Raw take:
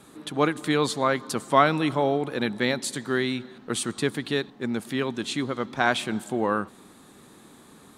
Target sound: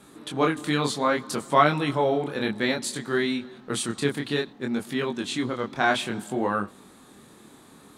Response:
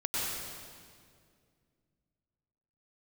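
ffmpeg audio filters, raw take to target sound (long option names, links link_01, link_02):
-af "flanger=delay=20:depth=8:speed=0.6,volume=3dB"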